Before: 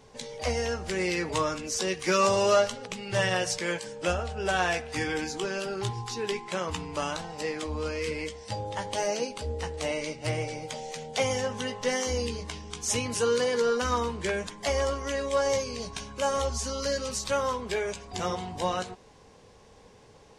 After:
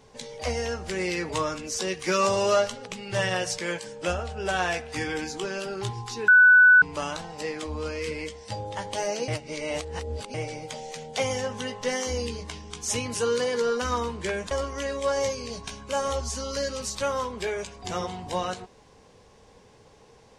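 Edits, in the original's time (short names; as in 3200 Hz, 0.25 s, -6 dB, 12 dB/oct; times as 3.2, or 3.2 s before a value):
6.28–6.82 bleep 1490 Hz -11 dBFS
9.28–10.34 reverse
14.51–14.8 cut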